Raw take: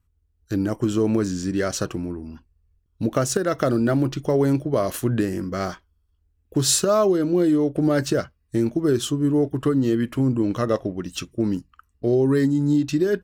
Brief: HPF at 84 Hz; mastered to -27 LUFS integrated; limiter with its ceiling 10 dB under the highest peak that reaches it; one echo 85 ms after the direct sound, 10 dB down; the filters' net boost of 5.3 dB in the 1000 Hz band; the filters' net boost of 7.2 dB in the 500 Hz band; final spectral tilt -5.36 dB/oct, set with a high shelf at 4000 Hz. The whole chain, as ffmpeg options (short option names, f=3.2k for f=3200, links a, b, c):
-af "highpass=84,equalizer=f=500:t=o:g=8.5,equalizer=f=1k:t=o:g=4,highshelf=f=4k:g=6.5,alimiter=limit=-10.5dB:level=0:latency=1,aecho=1:1:85:0.316,volume=-7dB"